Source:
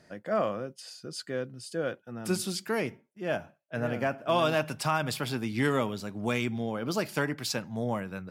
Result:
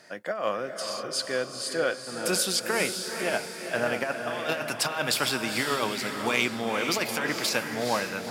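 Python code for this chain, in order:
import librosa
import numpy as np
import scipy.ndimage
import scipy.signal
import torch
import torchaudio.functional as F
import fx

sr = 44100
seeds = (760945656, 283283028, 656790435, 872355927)

y = fx.highpass(x, sr, hz=850.0, slope=6)
y = fx.over_compress(y, sr, threshold_db=-34.0, ratio=-0.5)
y = fx.echo_diffused(y, sr, ms=462, feedback_pct=48, wet_db=-6.0)
y = y * librosa.db_to_amplitude(8.0)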